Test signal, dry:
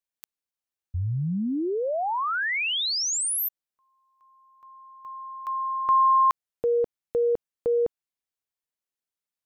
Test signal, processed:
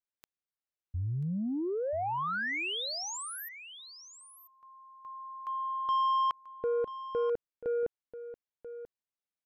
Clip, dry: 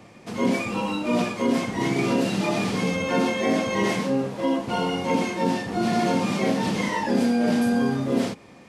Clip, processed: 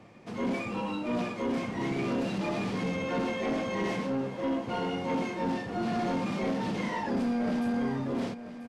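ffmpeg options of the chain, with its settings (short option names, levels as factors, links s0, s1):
-af "lowpass=f=3100:p=1,asoftclip=type=tanh:threshold=0.106,aecho=1:1:987:0.211,volume=0.562"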